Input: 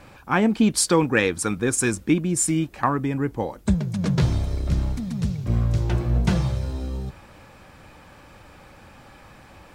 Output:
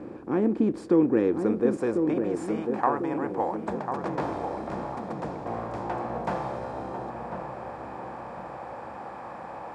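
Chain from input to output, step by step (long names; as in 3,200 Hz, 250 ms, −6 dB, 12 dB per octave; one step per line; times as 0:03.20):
compressor on every frequency bin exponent 0.6
band-pass filter sweep 340 Hz → 780 Hz, 0:01.13–0:02.63
feedback echo with a low-pass in the loop 1,046 ms, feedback 52%, low-pass 1,000 Hz, level −5 dB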